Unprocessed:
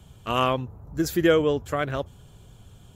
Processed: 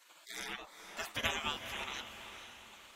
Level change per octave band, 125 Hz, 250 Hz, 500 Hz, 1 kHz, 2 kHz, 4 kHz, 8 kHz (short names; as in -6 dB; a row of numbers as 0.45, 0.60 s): -23.0, -25.5, -25.0, -15.0, -7.0, -5.0, -6.0 dB